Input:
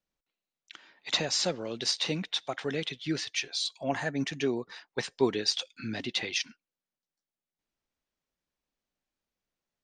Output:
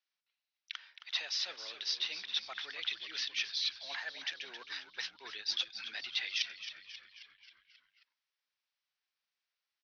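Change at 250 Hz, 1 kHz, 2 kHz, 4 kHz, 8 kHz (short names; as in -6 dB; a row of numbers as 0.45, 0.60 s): -31.5, -12.5, -3.5, -3.0, -11.0 dB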